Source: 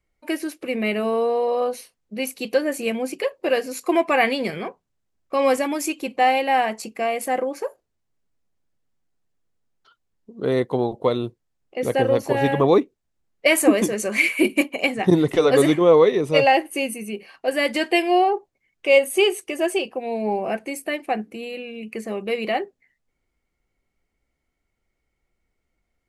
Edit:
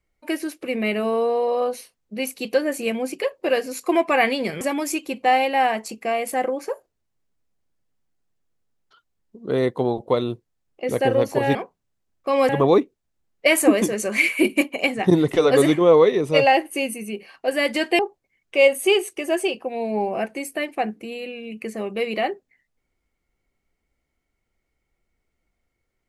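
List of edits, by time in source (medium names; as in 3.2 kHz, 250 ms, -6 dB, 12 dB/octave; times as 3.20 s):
4.61–5.55 s: move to 12.49 s
17.99–18.30 s: delete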